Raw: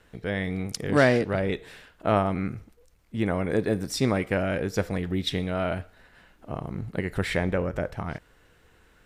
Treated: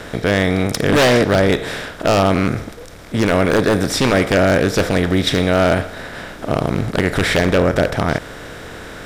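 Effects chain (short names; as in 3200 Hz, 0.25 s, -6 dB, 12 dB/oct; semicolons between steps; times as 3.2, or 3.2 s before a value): per-bin compression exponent 0.6; wavefolder -14.5 dBFS; gain +8.5 dB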